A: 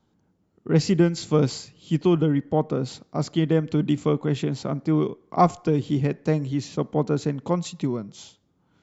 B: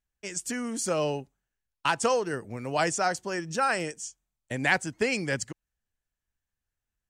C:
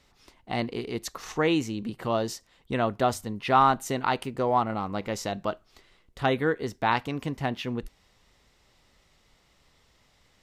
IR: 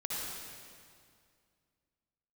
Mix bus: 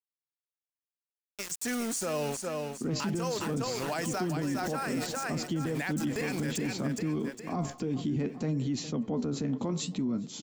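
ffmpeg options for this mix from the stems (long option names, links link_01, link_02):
-filter_complex "[0:a]equalizer=frequency=240:width_type=o:width=0.48:gain=13.5,acrossover=split=380[link_01][link_02];[link_02]acompressor=threshold=-18dB:ratio=6[link_03];[link_01][link_03]amix=inputs=2:normalize=0,flanger=delay=5.5:depth=9.9:regen=59:speed=0.61:shape=sinusoidal,adelay=2150,volume=2dB,asplit=2[link_04][link_05];[link_05]volume=-24dB[link_06];[1:a]bandreject=frequency=3000:width=12,aeval=exprs='val(0)*gte(abs(val(0)),0.0178)':channel_layout=same,adelay=1150,volume=0.5dB,asplit=2[link_07][link_08];[link_08]volume=-8dB[link_09];[link_04][link_07]amix=inputs=2:normalize=0,highshelf=frequency=4600:gain=5,alimiter=limit=-15dB:level=0:latency=1:release=100,volume=0dB[link_10];[link_06][link_09]amix=inputs=2:normalize=0,aecho=0:1:409|818|1227|1636|2045|2454:1|0.43|0.185|0.0795|0.0342|0.0147[link_11];[link_10][link_11]amix=inputs=2:normalize=0,alimiter=limit=-24dB:level=0:latency=1:release=30"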